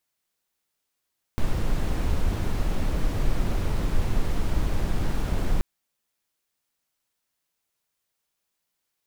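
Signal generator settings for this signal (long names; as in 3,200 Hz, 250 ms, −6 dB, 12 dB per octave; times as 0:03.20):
noise brown, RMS −22 dBFS 4.23 s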